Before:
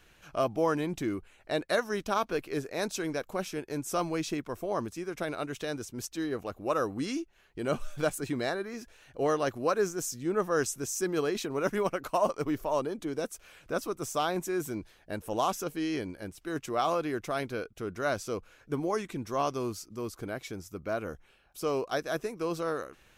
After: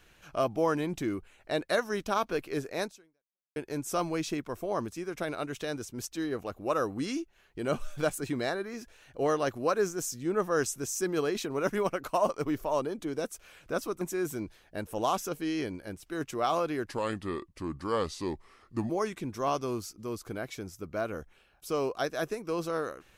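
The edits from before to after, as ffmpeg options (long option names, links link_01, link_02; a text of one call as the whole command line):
ffmpeg -i in.wav -filter_complex "[0:a]asplit=5[link_01][link_02][link_03][link_04][link_05];[link_01]atrim=end=3.56,asetpts=PTS-STARTPTS,afade=type=out:start_time=2.82:duration=0.74:curve=exp[link_06];[link_02]atrim=start=3.56:end=14.012,asetpts=PTS-STARTPTS,afade=type=in:duration=0.004:curve=hsin[link_07];[link_03]atrim=start=14.358:end=17.224[link_08];[link_04]atrim=start=17.22:end=18.82,asetpts=PTS-STARTPTS,asetrate=34839,aresample=44100,atrim=end_sample=89316,asetpts=PTS-STARTPTS[link_09];[link_05]atrim=start=18.816[link_10];[link_06][link_07]concat=n=2:v=0:a=1[link_11];[link_11][link_08]acrossfade=duration=0.004:curve1=hsin:curve2=hsin[link_12];[link_12][link_09]acrossfade=duration=0.004:curve1=hsin:curve2=hsin[link_13];[link_13][link_10]acrossfade=duration=0.004:curve1=hsin:curve2=hsin" out.wav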